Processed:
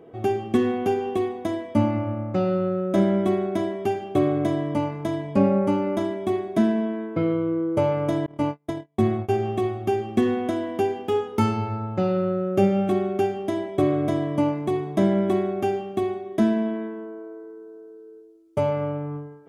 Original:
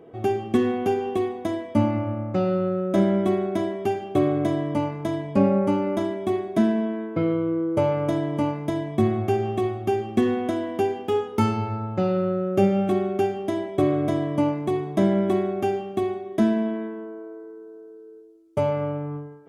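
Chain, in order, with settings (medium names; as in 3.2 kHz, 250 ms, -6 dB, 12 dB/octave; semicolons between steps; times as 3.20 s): 8.26–9.38 s: gate -24 dBFS, range -39 dB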